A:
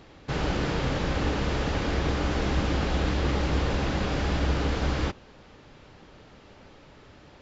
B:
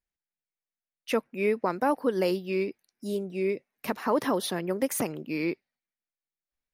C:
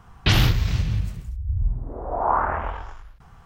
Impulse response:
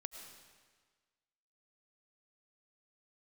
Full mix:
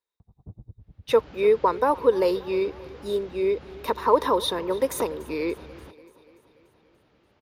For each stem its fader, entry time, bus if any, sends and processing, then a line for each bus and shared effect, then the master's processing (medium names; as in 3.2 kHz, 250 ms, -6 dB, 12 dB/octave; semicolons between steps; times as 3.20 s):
-13.0 dB, 0.80 s, bus A, no send, no echo send, low-pass 5.4 kHz 12 dB/octave
-6.5 dB, 0.00 s, no bus, no send, echo send -20.5 dB, tilt shelf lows -4.5 dB, about 730 Hz; small resonant body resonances 460/960/3700 Hz, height 18 dB, ringing for 20 ms
0.0 dB, 0.20 s, bus A, no send, no echo send, Gaussian low-pass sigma 14 samples; logarithmic tremolo 10 Hz, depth 34 dB; auto duck -16 dB, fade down 0.25 s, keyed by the second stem
bus A: 0.0 dB, compression 6:1, threshold -41 dBFS, peak gain reduction 22.5 dB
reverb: none
echo: feedback delay 290 ms, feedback 59%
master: high-pass 52 Hz